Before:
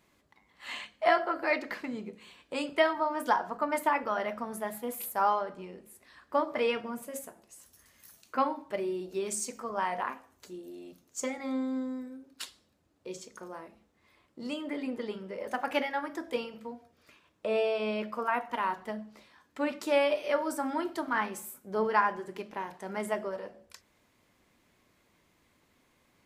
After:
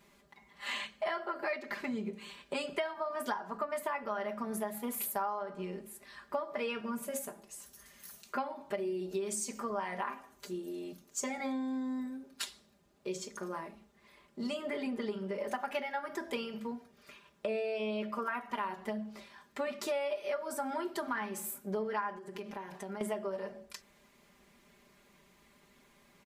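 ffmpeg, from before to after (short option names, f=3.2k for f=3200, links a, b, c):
-filter_complex "[0:a]asettb=1/sr,asplit=3[a][b][c];[a]atrim=end=22.184[d];[b]atrim=start=22.18:end=23.01,asetpts=PTS-STARTPTS,afade=t=in:d=0.004:c=qsin,afade=t=out:st=0.826:d=0.004:c=qsin,acompressor=threshold=-44dB:ratio=6:attack=3.2:release=140:knee=1:detection=peak[e];[c]atrim=start=23.006[f];[d][e]acrossfade=d=0.004:c1=hsin:c2=qsin[g];[g][f]acrossfade=d=0.004:c1=qsin:c2=hsin,aecho=1:1:5:0.85,acompressor=threshold=-35dB:ratio=6,volume=2dB"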